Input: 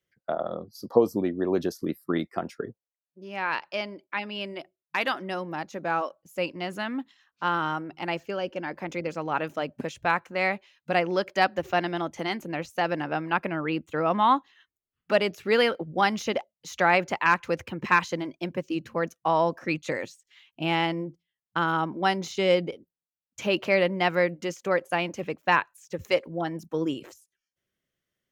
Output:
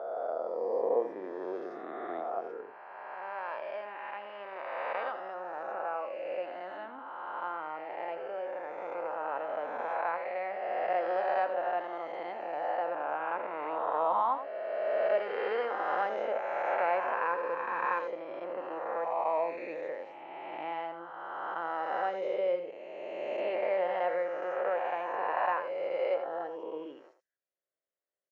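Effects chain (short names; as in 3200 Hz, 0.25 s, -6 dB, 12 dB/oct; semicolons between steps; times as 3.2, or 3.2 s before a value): spectral swells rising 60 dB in 2.77 s; ladder band-pass 740 Hz, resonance 30%; on a send: echo 83 ms -10.5 dB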